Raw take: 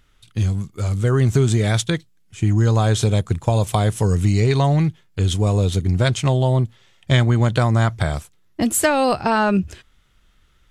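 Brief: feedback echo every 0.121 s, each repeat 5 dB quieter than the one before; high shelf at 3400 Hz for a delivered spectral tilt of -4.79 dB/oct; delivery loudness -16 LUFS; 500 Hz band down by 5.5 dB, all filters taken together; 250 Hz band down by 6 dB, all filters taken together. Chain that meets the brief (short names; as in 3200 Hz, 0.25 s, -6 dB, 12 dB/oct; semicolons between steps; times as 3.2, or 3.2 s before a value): bell 250 Hz -8 dB; bell 500 Hz -5 dB; high shelf 3400 Hz +3 dB; feedback echo 0.121 s, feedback 56%, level -5 dB; gain +3.5 dB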